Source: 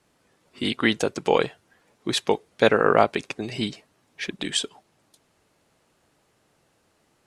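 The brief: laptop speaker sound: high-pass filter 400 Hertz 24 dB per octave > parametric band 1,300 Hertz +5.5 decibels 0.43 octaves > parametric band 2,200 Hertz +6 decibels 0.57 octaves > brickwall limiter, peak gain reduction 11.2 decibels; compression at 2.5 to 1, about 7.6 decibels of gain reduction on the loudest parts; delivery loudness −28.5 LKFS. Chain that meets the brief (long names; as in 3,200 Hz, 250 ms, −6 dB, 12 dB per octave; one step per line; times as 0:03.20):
downward compressor 2.5 to 1, threshold −24 dBFS
high-pass filter 400 Hz 24 dB per octave
parametric band 1,300 Hz +5.5 dB 0.43 octaves
parametric band 2,200 Hz +6 dB 0.57 octaves
level +5.5 dB
brickwall limiter −14.5 dBFS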